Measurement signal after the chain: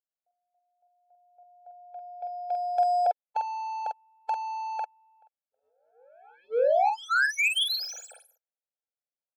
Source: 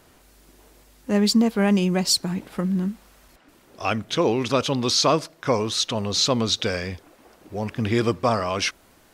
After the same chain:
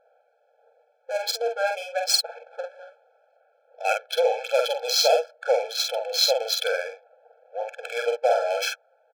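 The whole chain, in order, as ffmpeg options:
-filter_complex "[0:a]adynamicsmooth=sensitivity=3:basefreq=860,asplit=2[a][b];[b]adelay=47,volume=-4dB[c];[a][c]amix=inputs=2:normalize=0,afftfilt=real='re*eq(mod(floor(b*sr/1024/440),2),1)':imag='im*eq(mod(floor(b*sr/1024/440),2),1)':win_size=1024:overlap=0.75,volume=2dB"

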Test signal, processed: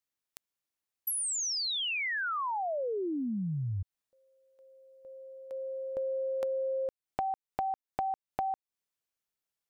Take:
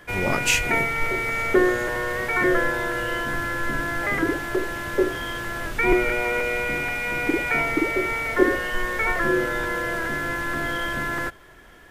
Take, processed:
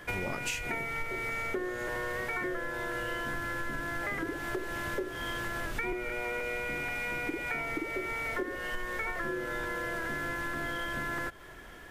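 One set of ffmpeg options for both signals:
-af "acompressor=threshold=-31dB:ratio=12"

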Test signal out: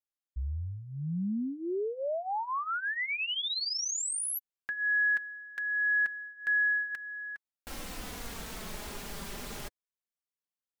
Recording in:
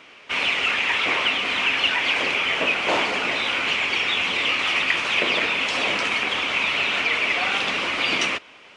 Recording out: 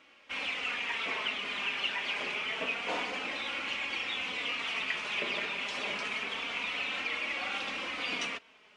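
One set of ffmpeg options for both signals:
-af "flanger=delay=3.6:depth=1.4:regen=-21:speed=0.27:shape=sinusoidal,volume=-9dB"

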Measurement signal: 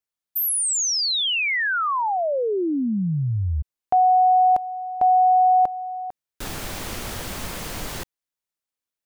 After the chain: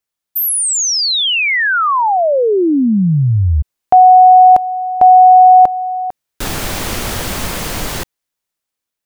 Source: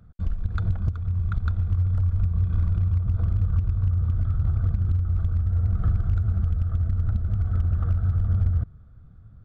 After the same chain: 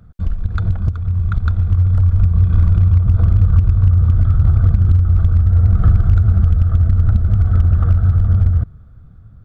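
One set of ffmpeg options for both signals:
-af "dynaudnorm=f=730:g=5:m=4dB,volume=7dB"

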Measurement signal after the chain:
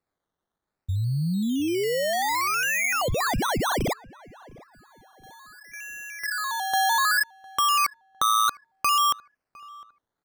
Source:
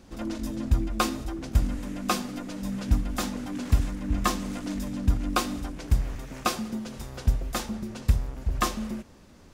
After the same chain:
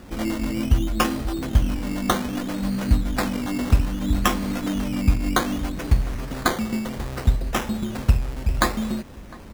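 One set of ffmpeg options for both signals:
-filter_complex "[0:a]asplit=2[a][b];[b]acompressor=threshold=-35dB:ratio=6,volume=1dB[c];[a][c]amix=inputs=2:normalize=0,acrusher=samples=14:mix=1:aa=0.000001:lfo=1:lforange=8.4:lforate=0.63,asplit=2[d][e];[e]adelay=706,lowpass=f=1.8k:p=1,volume=-22dB,asplit=2[f][g];[g]adelay=706,lowpass=f=1.8k:p=1,volume=0.38,asplit=2[h][i];[i]adelay=706,lowpass=f=1.8k:p=1,volume=0.38[j];[d][f][h][j]amix=inputs=4:normalize=0,volume=3dB"

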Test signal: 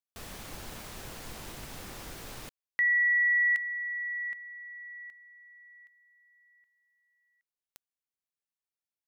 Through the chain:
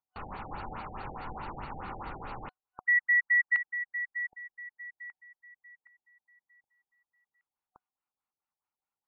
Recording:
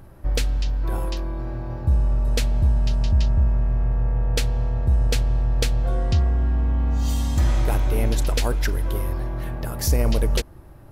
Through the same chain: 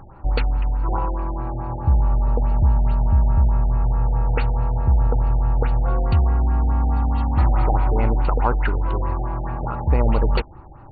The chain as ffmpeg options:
-af "superequalizer=9b=3.16:10b=2.51:13b=0.355,afftfilt=real='re*lt(b*sr/1024,800*pow(4600/800,0.5+0.5*sin(2*PI*4.7*pts/sr)))':imag='im*lt(b*sr/1024,800*pow(4600/800,0.5+0.5*sin(2*PI*4.7*pts/sr)))':win_size=1024:overlap=0.75,volume=2dB"

